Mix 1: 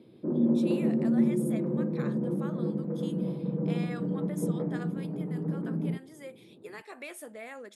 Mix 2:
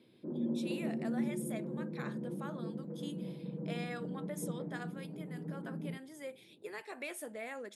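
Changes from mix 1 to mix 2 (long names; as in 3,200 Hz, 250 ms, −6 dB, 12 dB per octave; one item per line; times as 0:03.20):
background −10.5 dB
master: add parametric band 1,200 Hz −4 dB 0.21 octaves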